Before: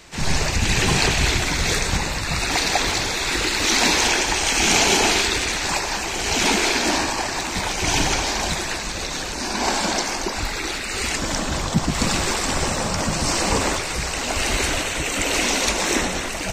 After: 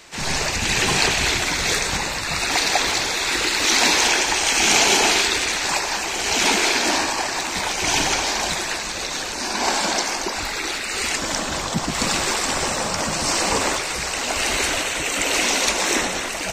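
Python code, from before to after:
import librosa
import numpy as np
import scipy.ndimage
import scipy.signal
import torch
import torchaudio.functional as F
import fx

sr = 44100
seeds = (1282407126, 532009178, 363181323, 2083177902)

y = fx.low_shelf(x, sr, hz=210.0, db=-11.0)
y = y * librosa.db_to_amplitude(1.5)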